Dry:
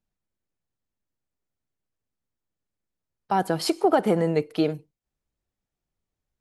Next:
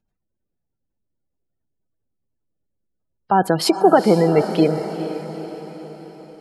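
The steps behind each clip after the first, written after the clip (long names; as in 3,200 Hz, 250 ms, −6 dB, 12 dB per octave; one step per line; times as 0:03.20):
gate on every frequency bin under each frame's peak −30 dB strong
feedback delay with all-pass diffusion 457 ms, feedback 54%, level −10.5 dB
level +7 dB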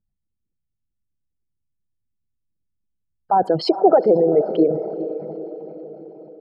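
spectral envelope exaggerated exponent 2
high-frequency loss of the air 140 metres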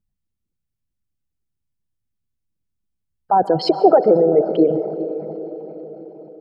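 dense smooth reverb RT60 0.82 s, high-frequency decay 0.45×, pre-delay 115 ms, DRR 15.5 dB
level +1.5 dB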